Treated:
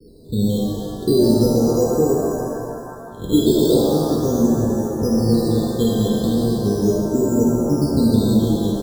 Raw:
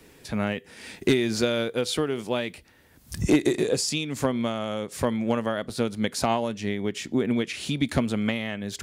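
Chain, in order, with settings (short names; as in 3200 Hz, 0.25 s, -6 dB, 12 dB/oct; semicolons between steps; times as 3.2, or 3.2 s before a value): 2.12–3.32 spectral contrast lowered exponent 0.15; Chebyshev low-pass 510 Hz, order 8; in parallel at +1.5 dB: limiter -20 dBFS, peak gain reduction 9 dB; on the sum: decimation with a swept rate 9×, swing 60% 0.38 Hz; on a send: frequency-shifting echo 0.122 s, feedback 46%, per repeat -78 Hz, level -14 dB; on the sum: shimmer reverb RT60 2.2 s, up +7 st, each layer -8 dB, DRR -3 dB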